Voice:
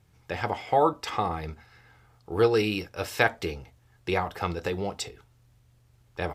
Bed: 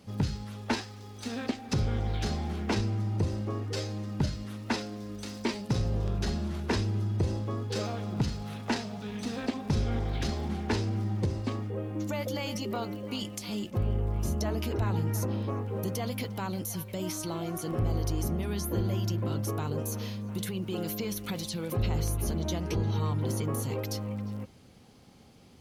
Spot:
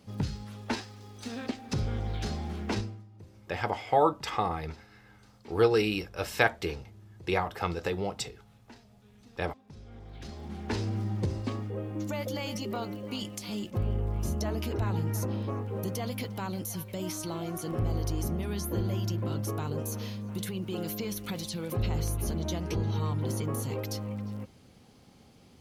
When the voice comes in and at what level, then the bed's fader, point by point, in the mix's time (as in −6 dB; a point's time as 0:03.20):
3.20 s, −1.5 dB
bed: 0:02.79 −2.5 dB
0:03.08 −22.5 dB
0:09.70 −22.5 dB
0:10.84 −1 dB